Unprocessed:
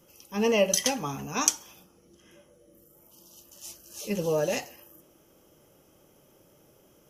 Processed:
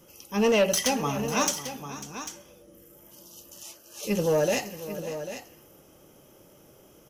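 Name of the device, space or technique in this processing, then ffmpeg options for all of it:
saturation between pre-emphasis and de-emphasis: -filter_complex "[0:a]asettb=1/sr,asplit=3[s0][s1][s2];[s0]atrim=end=3.634[s3];[s1]atrim=start=3.63:end=4.03,asetpts=PTS-STARTPTS,afade=t=in:d=0.004:c=qsin,afade=t=out:st=0.396:d=0.004:c=qsin,bass=f=250:g=-13,treble=f=4000:g=-7[s4];[s2]atrim=start=4.026[s5];[s3][s4]acrossfade=d=0.004:c1=hsin:c2=qsin[s6];[s6][s5]acrossfade=d=0.004:c1=qsin:c2=hsin,highshelf=f=5600:g=7,asoftclip=type=tanh:threshold=0.1,highshelf=f=5600:g=-7,aecho=1:1:546|795:0.178|0.266,volume=1.68"

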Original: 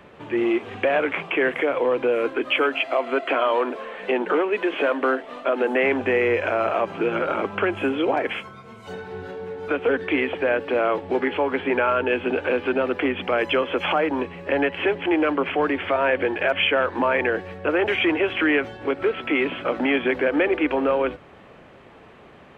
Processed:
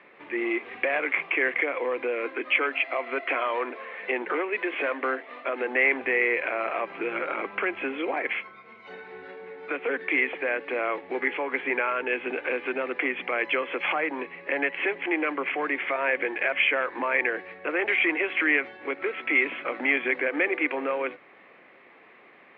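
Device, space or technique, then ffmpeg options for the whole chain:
phone earpiece: -af "highpass=400,equalizer=f=440:t=q:w=4:g=-4,equalizer=f=620:t=q:w=4:g=-6,equalizer=f=880:t=q:w=4:g=-5,equalizer=f=1400:t=q:w=4:g=-4,equalizer=f=2100:t=q:w=4:g=8,equalizer=f=3100:t=q:w=4:g=-6,lowpass=f=3600:w=0.5412,lowpass=f=3600:w=1.3066,volume=0.794"

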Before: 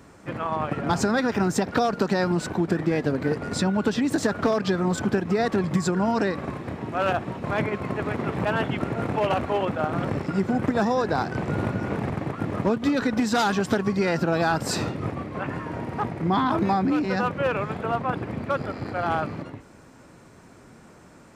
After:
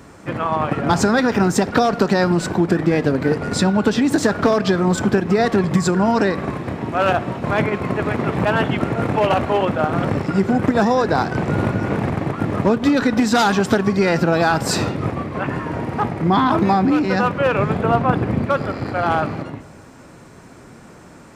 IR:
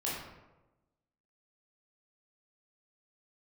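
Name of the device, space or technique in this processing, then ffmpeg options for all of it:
saturated reverb return: -filter_complex "[0:a]asettb=1/sr,asplit=3[s0][s1][s2];[s0]atrim=end=17.584[s3];[s1]atrim=start=17.58:end=18.46,asetpts=PTS-STARTPTS,afade=t=in:d=0.004:c=qsin,afade=t=out:st=0.876:d=0.004:c=qsin,lowshelf=f=480:g=6[s4];[s2]atrim=start=18.456[s5];[s3][s4]acrossfade=d=0.004:c1=hsin:c2=qsin[s6];[s6][s5]acrossfade=d=0.004:c1=qsin:c2=hsin,asplit=2[s7][s8];[1:a]atrim=start_sample=2205[s9];[s8][s9]afir=irnorm=-1:irlink=0,asoftclip=type=tanh:threshold=0.119,volume=0.15[s10];[s7][s10]amix=inputs=2:normalize=0,volume=2"

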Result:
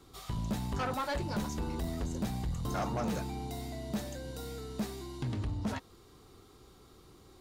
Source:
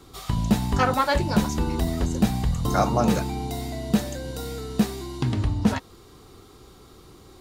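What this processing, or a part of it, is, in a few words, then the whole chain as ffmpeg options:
saturation between pre-emphasis and de-emphasis: -af "highshelf=f=5700:g=10,asoftclip=type=tanh:threshold=0.106,highshelf=f=5700:g=-10,volume=0.376"

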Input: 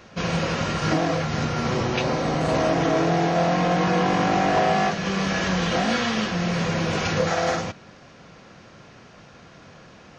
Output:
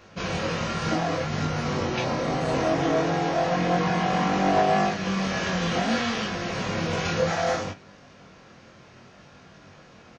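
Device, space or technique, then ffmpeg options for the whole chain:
double-tracked vocal: -filter_complex "[0:a]asplit=2[s0][s1];[s1]adelay=31,volume=0.224[s2];[s0][s2]amix=inputs=2:normalize=0,flanger=delay=20:depth=3.3:speed=0.63"

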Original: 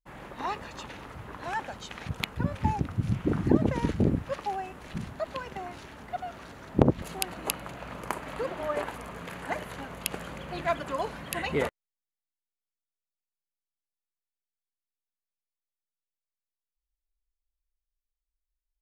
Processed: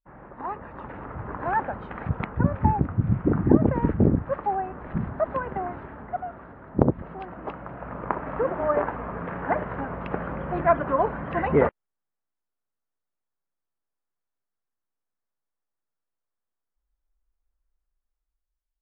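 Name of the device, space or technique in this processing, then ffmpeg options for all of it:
action camera in a waterproof case: -af "lowpass=f=1600:w=0.5412,lowpass=f=1600:w=1.3066,dynaudnorm=f=200:g=9:m=3.16,volume=0.891" -ar 44100 -c:a aac -b:a 48k

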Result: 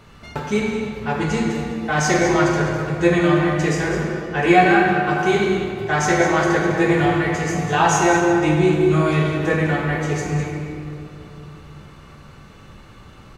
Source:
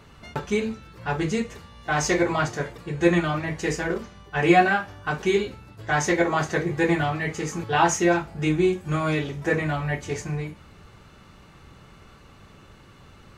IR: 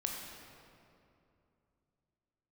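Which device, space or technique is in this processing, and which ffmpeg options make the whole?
cave: -filter_complex "[0:a]aecho=1:1:203:0.299[s0];[1:a]atrim=start_sample=2205[s1];[s0][s1]afir=irnorm=-1:irlink=0,volume=1.41"

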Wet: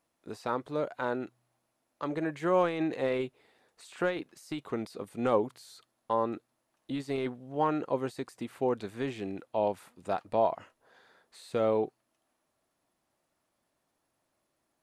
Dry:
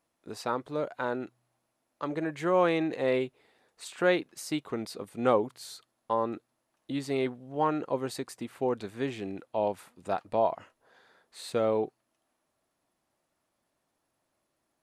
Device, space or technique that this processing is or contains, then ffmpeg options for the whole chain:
de-esser from a sidechain: -filter_complex "[0:a]asplit=2[s0][s1];[s1]highpass=6200,apad=whole_len=653674[s2];[s0][s2]sidechaincompress=threshold=0.00178:ratio=5:attack=3.3:release=28"

